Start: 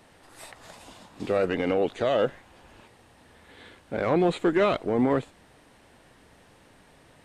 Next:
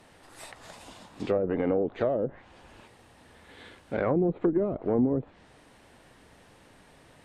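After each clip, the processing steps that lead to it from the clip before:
treble cut that deepens with the level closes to 380 Hz, closed at −19 dBFS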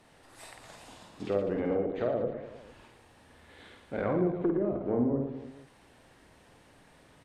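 reverse bouncing-ball delay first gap 50 ms, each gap 1.3×, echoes 5
level −5 dB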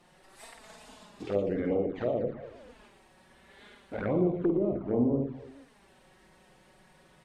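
flanger swept by the level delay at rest 5.9 ms, full sweep at −25 dBFS
level +2 dB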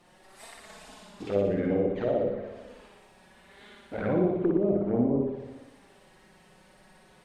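flutter between parallel walls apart 10.3 metres, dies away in 0.79 s
level +1 dB

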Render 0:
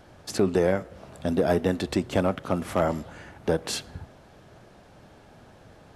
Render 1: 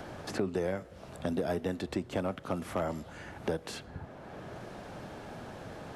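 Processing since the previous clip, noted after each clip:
multiband upward and downward compressor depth 70%
level −8.5 dB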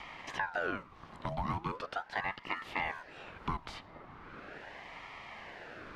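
three-way crossover with the lows and the highs turned down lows −15 dB, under 230 Hz, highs −16 dB, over 4,500 Hz
ring modulator whose carrier an LFO sweeps 980 Hz, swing 60%, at 0.39 Hz
level +1 dB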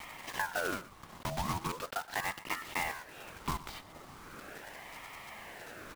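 one scale factor per block 3 bits
single-tap delay 120 ms −17.5 dB

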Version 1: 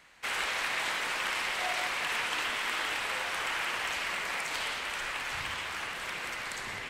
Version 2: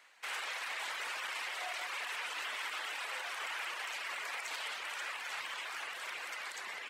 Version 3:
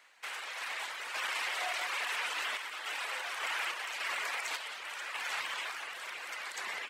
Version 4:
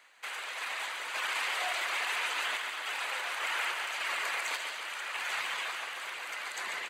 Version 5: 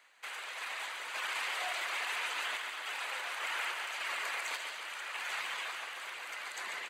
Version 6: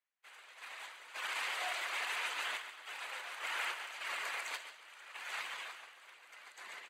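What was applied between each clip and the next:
high-pass filter 510 Hz 12 dB per octave; reverb reduction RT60 0.61 s; brickwall limiter −27.5 dBFS, peak gain reduction 7.5 dB; level −3 dB
sample-and-hold tremolo; level +5 dB
notch filter 5,400 Hz, Q 7.8; repeating echo 141 ms, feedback 58%, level −7 dB; level +1.5 dB
high-pass filter 120 Hz 6 dB per octave; level −3.5 dB
downward expander −32 dBFS; level +1.5 dB

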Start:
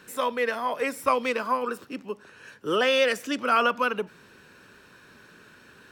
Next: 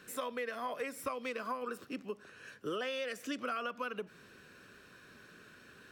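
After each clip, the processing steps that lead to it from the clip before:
notch filter 900 Hz, Q 5.6
downward compressor 10 to 1, threshold −30 dBFS, peak gain reduction 13 dB
level −4.5 dB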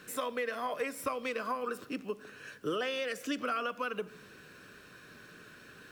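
bit-depth reduction 12 bits, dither none
rectangular room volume 3,600 cubic metres, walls furnished, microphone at 0.48 metres
level +3.5 dB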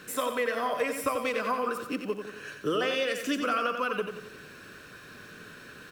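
repeating echo 90 ms, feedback 47%, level −7 dB
level +5 dB

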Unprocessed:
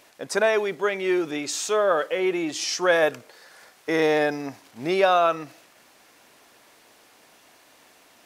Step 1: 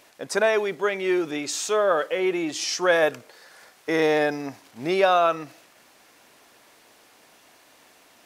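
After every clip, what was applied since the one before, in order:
no processing that can be heard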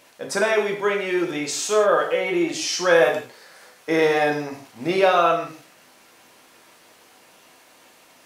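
reverb whose tail is shaped and stops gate 200 ms falling, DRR 0 dB

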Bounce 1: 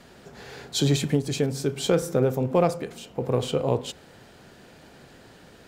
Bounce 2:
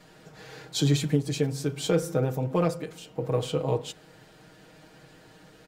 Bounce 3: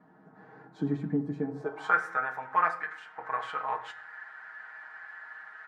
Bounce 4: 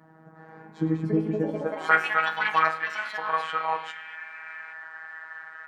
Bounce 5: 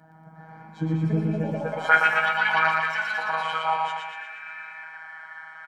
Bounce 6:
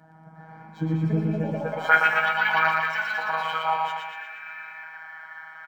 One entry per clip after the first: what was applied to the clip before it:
comb filter 6.4 ms, depth 83%; level −5 dB
flat-topped bell 1,200 Hz +16 dB; band-pass filter sweep 250 Hz → 1,700 Hz, 0:01.45–0:01.98; on a send at −7 dB: convolution reverb RT60 0.50 s, pre-delay 5 ms
dynamic equaliser 2,800 Hz, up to +6 dB, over −50 dBFS, Q 2; phases set to zero 160 Hz; delay with pitch and tempo change per echo 488 ms, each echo +5 semitones, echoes 3, each echo −6 dB; level +6.5 dB
comb filter 1.3 ms, depth 61%; on a send: repeating echo 118 ms, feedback 53%, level −3 dB
linearly interpolated sample-rate reduction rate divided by 2×

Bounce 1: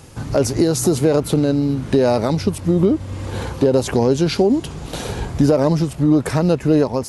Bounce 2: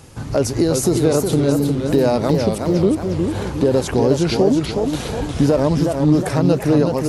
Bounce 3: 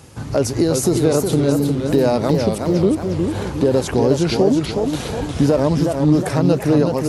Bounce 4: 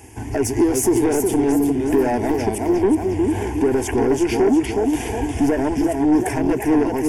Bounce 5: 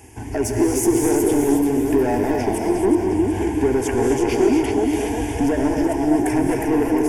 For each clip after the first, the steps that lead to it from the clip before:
feedback echo with a swinging delay time 363 ms, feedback 48%, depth 178 cents, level −5 dB; level −1 dB
high-pass filter 49 Hz
parametric band 1,400 Hz −6 dB 0.37 octaves; soft clipping −14 dBFS, distortion −11 dB; phaser with its sweep stopped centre 820 Hz, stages 8; level +5 dB
reverb whose tail is shaped and stops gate 290 ms rising, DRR 2.5 dB; level −2 dB

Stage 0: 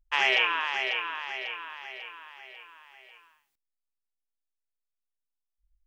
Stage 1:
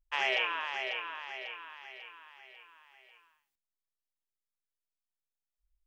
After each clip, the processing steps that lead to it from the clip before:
dynamic equaliser 600 Hz, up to +6 dB, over −49 dBFS, Q 2.4
level −7 dB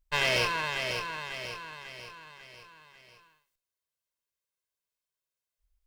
lower of the sound and its delayed copy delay 1.9 ms
level +5 dB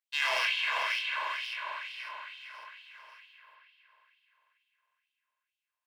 pitch vibrato 0.4 Hz 30 cents
spring reverb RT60 3.9 s, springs 44 ms, chirp 45 ms, DRR −2.5 dB
auto-filter high-pass sine 2.2 Hz 840–3,200 Hz
level −6.5 dB

